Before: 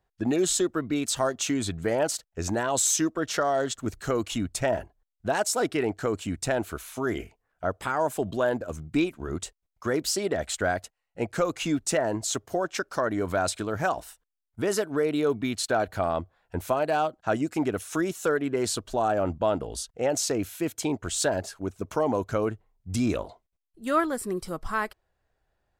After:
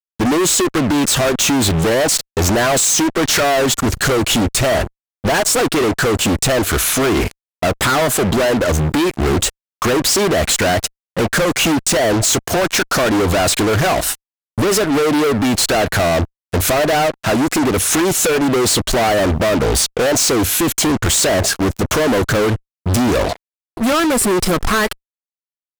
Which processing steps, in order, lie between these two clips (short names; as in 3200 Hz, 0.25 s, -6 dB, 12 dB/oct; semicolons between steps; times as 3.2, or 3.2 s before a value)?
bell 890 Hz -4.5 dB 0.35 oct; compressor 6:1, threshold -30 dBFS, peak gain reduction 11 dB; fuzz box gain 48 dB, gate -52 dBFS